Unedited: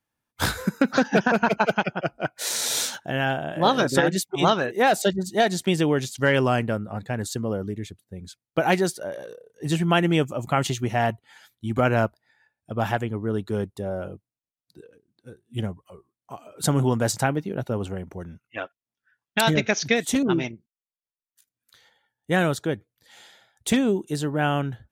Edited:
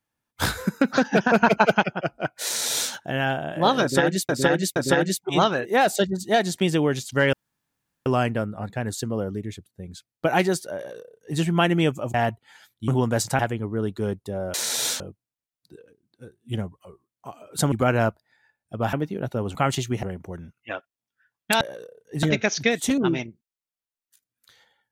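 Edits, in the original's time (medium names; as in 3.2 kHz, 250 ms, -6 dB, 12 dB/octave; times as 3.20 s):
1.32–1.84 s: gain +3.5 dB
2.46–2.92 s: copy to 14.05 s
3.82–4.29 s: loop, 3 plays
6.39 s: insert room tone 0.73 s
9.10–9.72 s: copy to 19.48 s
10.47–10.95 s: move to 17.90 s
11.69–12.90 s: swap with 16.77–17.28 s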